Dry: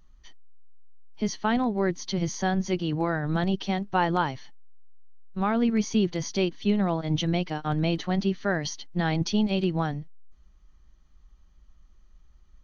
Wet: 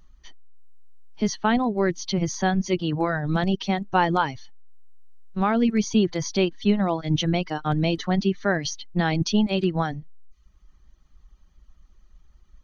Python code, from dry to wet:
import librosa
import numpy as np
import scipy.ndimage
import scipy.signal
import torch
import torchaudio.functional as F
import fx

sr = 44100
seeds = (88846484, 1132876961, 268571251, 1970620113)

y = fx.dereverb_blind(x, sr, rt60_s=0.66)
y = y * librosa.db_to_amplitude(4.0)